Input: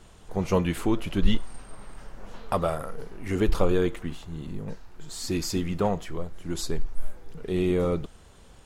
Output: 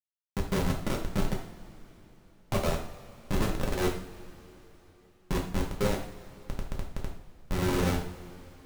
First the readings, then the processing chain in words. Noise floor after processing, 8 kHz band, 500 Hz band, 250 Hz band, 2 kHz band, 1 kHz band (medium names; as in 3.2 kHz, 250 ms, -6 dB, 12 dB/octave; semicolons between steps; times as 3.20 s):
-61 dBFS, -3.0 dB, -6.0 dB, -5.0 dB, +0.5 dB, -3.0 dB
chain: Schmitt trigger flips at -21.5 dBFS; two-slope reverb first 0.49 s, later 3.9 s, from -20 dB, DRR -1.5 dB; trim -2.5 dB